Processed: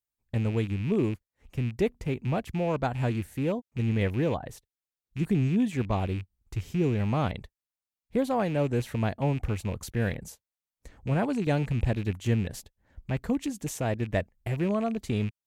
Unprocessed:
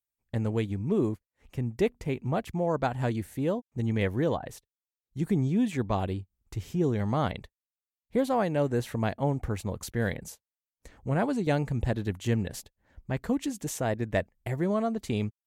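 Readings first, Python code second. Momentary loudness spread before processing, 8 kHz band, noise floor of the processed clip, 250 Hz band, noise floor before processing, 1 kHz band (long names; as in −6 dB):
10 LU, −1.5 dB, below −85 dBFS, +0.5 dB, below −85 dBFS, −1.0 dB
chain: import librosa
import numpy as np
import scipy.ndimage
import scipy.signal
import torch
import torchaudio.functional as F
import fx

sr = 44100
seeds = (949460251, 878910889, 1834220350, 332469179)

y = fx.rattle_buzz(x, sr, strikes_db=-34.0, level_db=-32.0)
y = fx.low_shelf(y, sr, hz=180.0, db=5.5)
y = y * 10.0 ** (-1.5 / 20.0)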